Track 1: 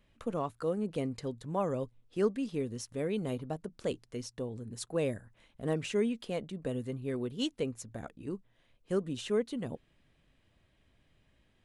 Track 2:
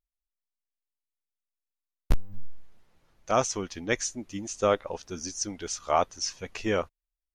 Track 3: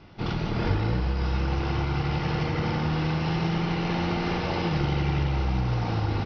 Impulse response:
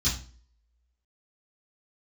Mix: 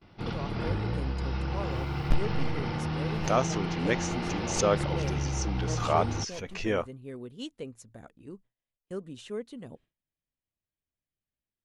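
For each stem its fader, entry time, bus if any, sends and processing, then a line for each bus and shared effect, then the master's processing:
-6.0 dB, 0.00 s, no send, dry
-1.5 dB, 0.00 s, no send, high shelf 5800 Hz -11 dB; backwards sustainer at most 100 dB/s
-5.5 dB, 0.00 s, no send, dry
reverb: off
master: gate with hold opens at -47 dBFS

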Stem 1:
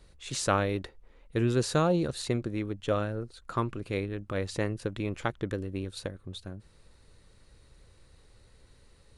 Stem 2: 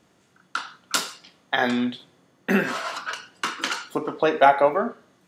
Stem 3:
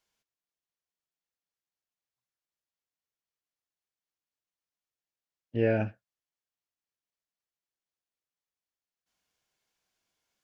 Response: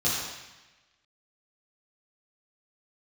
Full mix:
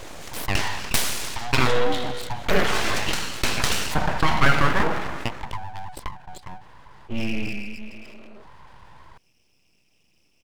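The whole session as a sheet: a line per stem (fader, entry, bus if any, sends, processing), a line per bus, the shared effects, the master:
-3.0 dB, 0.00 s, no send, Wiener smoothing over 25 samples; rippled Chebyshev high-pass 360 Hz, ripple 9 dB
-1.0 dB, 0.00 s, send -19.5 dB, dry
-6.0 dB, 1.55 s, send -4.5 dB, EQ curve 110 Hz 0 dB, 430 Hz -26 dB, 1600 Hz -30 dB, 2600 Hz +5 dB, 4000 Hz -23 dB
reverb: on, RT60 1.1 s, pre-delay 3 ms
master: full-wave rectifier; fast leveller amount 50%

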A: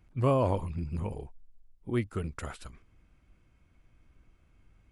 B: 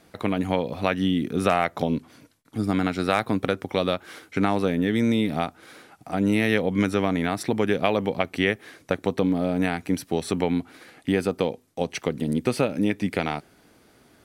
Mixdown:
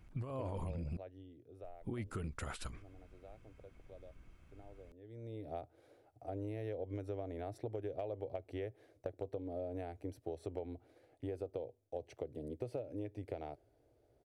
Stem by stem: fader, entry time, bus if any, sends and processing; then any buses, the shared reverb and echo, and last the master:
-0.5 dB, 0.00 s, muted 0.97–1.63, no send, negative-ratio compressor -30 dBFS, ratio -0.5; limiter -28 dBFS, peak gain reduction 9.5 dB
-8.0 dB, 0.15 s, no send, EQ curve 120 Hz 0 dB, 190 Hz -27 dB, 310 Hz -7 dB, 620 Hz -1 dB, 1100 Hz -20 dB; auto duck -20 dB, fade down 1.90 s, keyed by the first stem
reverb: off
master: hard clip -25 dBFS, distortion -39 dB; compressor, threshold -37 dBFS, peak gain reduction 7.5 dB

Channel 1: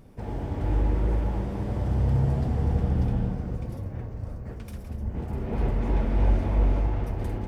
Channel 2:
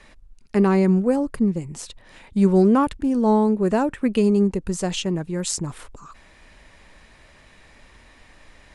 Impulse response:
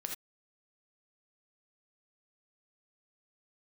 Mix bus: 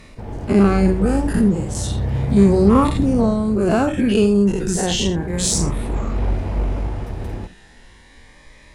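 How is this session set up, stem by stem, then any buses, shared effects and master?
-0.5 dB, 0.00 s, send -6 dB, self-modulated delay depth 0.31 ms
-1.5 dB, 0.00 s, send -3.5 dB, spectral dilation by 0.12 s; reverb removal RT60 0.64 s; cascading phaser rising 0.33 Hz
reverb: on, pre-delay 3 ms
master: added harmonics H 8 -34 dB, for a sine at -1.5 dBFS

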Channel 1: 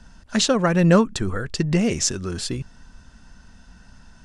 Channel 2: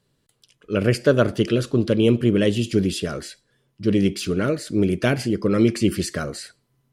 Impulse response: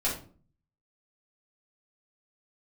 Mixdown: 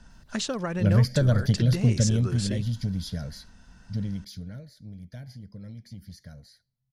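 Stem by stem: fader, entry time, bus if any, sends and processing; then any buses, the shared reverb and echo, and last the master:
-4.5 dB, 0.00 s, no send, compressor 4:1, threshold -23 dBFS, peak gain reduction 11.5 dB
1.98 s -4 dB -> 2.52 s -11 dB -> 3.92 s -11 dB -> 4.69 s -24 dB, 0.10 s, no send, tone controls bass +15 dB, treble +10 dB; compressor, threshold -10 dBFS, peak gain reduction 7.5 dB; fixed phaser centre 1800 Hz, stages 8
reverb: off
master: dry

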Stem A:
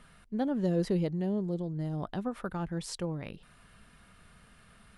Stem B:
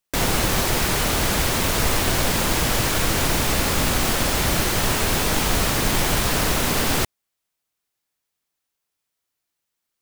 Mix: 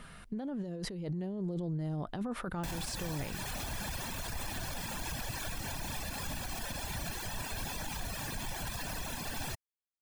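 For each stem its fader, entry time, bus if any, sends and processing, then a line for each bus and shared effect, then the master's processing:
+2.0 dB, 0.00 s, no send, negative-ratio compressor -37 dBFS, ratio -1
-14.0 dB, 2.50 s, no send, comb 1.2 ms, depth 51%; reverb removal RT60 1.5 s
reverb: off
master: limiter -28.5 dBFS, peak gain reduction 11 dB

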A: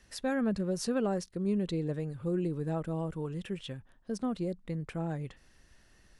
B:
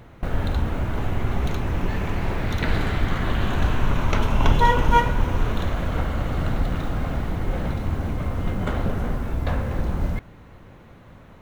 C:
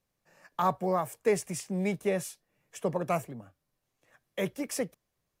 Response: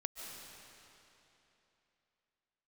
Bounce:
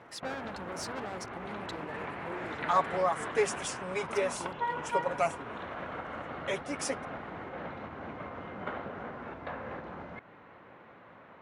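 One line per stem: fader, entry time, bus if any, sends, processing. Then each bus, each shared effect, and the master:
-11.0 dB, 0.00 s, no send, HPF 79 Hz 24 dB/oct; sample leveller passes 3
0.0 dB, 0.00 s, no send, LPF 2100 Hz 12 dB/oct; compressor 6:1, threshold -26 dBFS, peak gain reduction 14.5 dB
-1.0 dB, 2.10 s, no send, elliptic low-pass 10000 Hz, stop band 40 dB; comb 7.2 ms, depth 91%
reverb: off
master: weighting filter A

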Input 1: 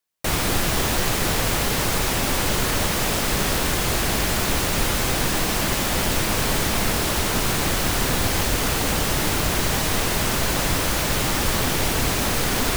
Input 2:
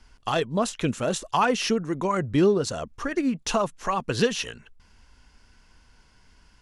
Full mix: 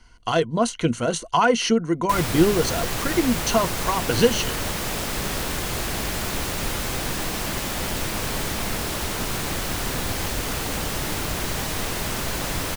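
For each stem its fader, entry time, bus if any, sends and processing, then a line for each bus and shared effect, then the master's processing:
-5.0 dB, 1.85 s, no send, dry
+2.0 dB, 0.00 s, no send, ripple EQ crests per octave 1.9, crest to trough 9 dB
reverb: off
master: dry

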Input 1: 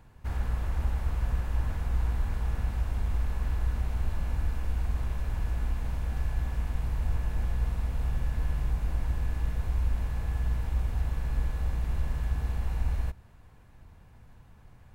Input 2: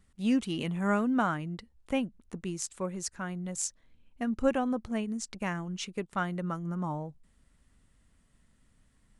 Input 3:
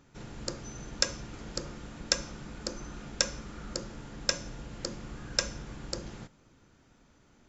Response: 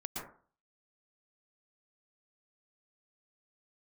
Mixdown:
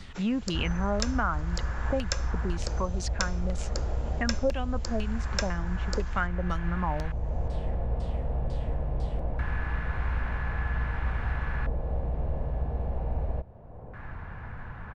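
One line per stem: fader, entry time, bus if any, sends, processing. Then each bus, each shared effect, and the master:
-2.5 dB, 0.30 s, no send, LFO low-pass square 0.22 Hz 600–1600 Hz
+1.0 dB, 0.00 s, no send, LFO low-pass saw down 2 Hz 520–5000 Hz
-3.0 dB, 0.00 s, no send, Bessel high-pass 390 Hz; three-band expander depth 40%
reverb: off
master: bell 280 Hz -3.5 dB 1 oct; three-band squash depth 70%

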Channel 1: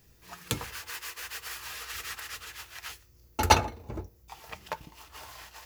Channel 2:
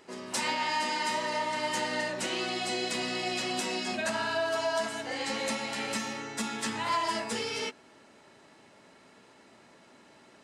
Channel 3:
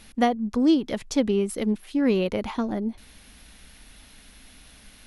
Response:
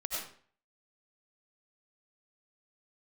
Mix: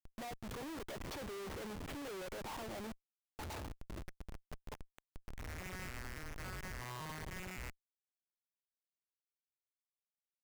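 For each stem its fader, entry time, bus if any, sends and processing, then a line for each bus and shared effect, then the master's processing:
-14.5 dB, 0.00 s, no bus, no send, one diode to ground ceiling -8.5 dBFS
+1.0 dB, 0.00 s, bus A, no send, arpeggiated vocoder major triad, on B2, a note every 0.28 s; band-pass 2000 Hz, Q 2.2; auto duck -17 dB, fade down 0.60 s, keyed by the third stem
+1.0 dB, 0.00 s, bus A, no send, notch comb 250 Hz
bus A: 0.0 dB, BPF 580–2800 Hz; compressor 8:1, threshold -35 dBFS, peak gain reduction 14.5 dB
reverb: off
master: Schmitt trigger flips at -45.5 dBFS

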